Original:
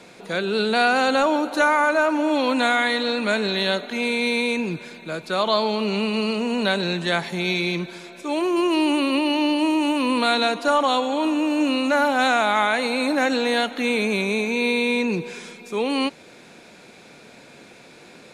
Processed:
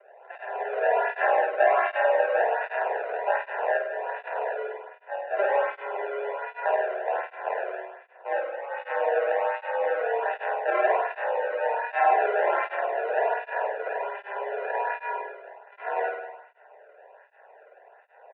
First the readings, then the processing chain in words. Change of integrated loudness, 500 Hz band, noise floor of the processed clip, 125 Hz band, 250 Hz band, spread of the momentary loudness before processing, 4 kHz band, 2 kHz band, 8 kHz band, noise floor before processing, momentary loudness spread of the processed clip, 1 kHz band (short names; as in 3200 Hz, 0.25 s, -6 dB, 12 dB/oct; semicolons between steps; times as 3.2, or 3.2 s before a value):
-5.5 dB, -2.5 dB, -55 dBFS, under -40 dB, under -25 dB, 8 LU, under -25 dB, -7.0 dB, under -40 dB, -47 dBFS, 12 LU, -2.5 dB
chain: tracing distortion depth 0.36 ms; fixed phaser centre 890 Hz, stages 4; comb 3.5 ms, depth 76%; sample-rate reducer 1000 Hz, jitter 0%; flutter echo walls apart 8.8 m, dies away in 0.98 s; mistuned SSB +200 Hz 290–2100 Hz; tape flanging out of phase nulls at 1.3 Hz, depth 1.2 ms